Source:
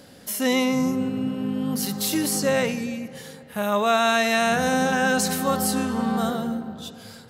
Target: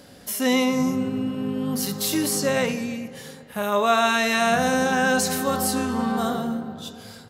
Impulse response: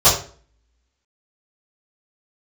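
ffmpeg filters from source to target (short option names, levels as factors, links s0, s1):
-filter_complex "[0:a]asplit=2[s0][s1];[s1]adelay=300,highpass=300,lowpass=3400,asoftclip=type=hard:threshold=0.119,volume=0.0891[s2];[s0][s2]amix=inputs=2:normalize=0,asplit=2[s3][s4];[1:a]atrim=start_sample=2205[s5];[s4][s5]afir=irnorm=-1:irlink=0,volume=0.0224[s6];[s3][s6]amix=inputs=2:normalize=0"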